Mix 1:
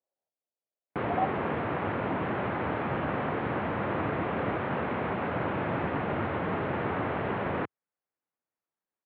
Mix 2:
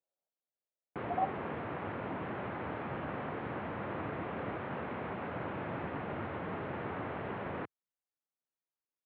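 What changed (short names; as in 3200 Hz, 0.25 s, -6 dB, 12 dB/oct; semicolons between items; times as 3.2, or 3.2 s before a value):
speech -3.5 dB; background -8.5 dB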